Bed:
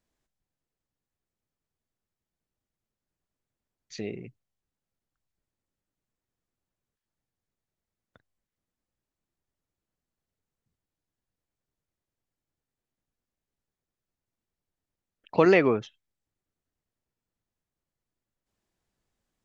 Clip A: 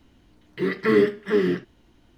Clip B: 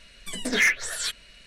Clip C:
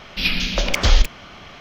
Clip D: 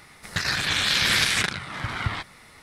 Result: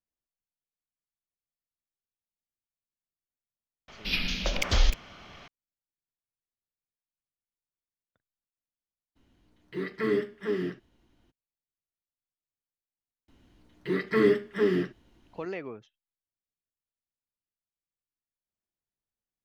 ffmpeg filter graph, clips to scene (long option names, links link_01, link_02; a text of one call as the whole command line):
ffmpeg -i bed.wav -i cue0.wav -i cue1.wav -i cue2.wav -filter_complex "[1:a]asplit=2[link_01][link_02];[0:a]volume=-17dB[link_03];[3:a]atrim=end=1.6,asetpts=PTS-STARTPTS,volume=-8.5dB,afade=type=in:duration=0.004:curve=hsin,afade=type=out:start_time=1.596:duration=0.004:curve=hsin,adelay=3880[link_04];[link_01]atrim=end=2.17,asetpts=PTS-STARTPTS,volume=-9dB,afade=type=in:duration=0.02,afade=type=out:start_time=2.15:duration=0.02,adelay=9150[link_05];[link_02]atrim=end=2.17,asetpts=PTS-STARTPTS,volume=-4dB,afade=type=in:duration=0.004:curve=hsin,afade=type=out:start_time=2.166:duration=0.004:curve=hsin,adelay=13280[link_06];[link_03][link_04][link_05][link_06]amix=inputs=4:normalize=0" out.wav